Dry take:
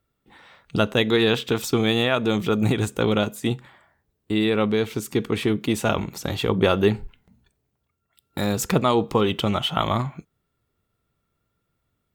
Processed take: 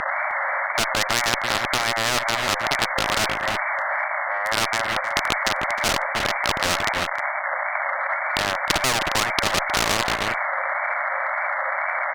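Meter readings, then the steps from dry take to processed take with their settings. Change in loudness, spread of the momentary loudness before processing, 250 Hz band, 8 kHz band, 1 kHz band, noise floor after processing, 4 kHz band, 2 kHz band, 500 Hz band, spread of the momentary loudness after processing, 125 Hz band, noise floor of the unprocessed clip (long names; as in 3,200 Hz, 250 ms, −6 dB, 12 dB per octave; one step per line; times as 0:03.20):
+0.5 dB, 8 LU, −12.0 dB, +8.5 dB, +7.5 dB, −27 dBFS, +4.0 dB, +10.5 dB, −5.0 dB, 3 LU, −10.5 dB, −76 dBFS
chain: spike at every zero crossing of −11.5 dBFS
de-essing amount 40%
noise gate −31 dBFS, range −7 dB
brick-wall band-pass 550–2,200 Hz
in parallel at 0 dB: downward compressor 10 to 1, threshold −41 dBFS, peak gain reduction 20.5 dB
on the sum: asymmetric clip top −28.5 dBFS
tape wow and flutter 100 cents
on a send: single-tap delay 311 ms −17.5 dB
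on the sum: boost into a limiter +24 dB
every bin compressed towards the loudest bin 4 to 1
level −1 dB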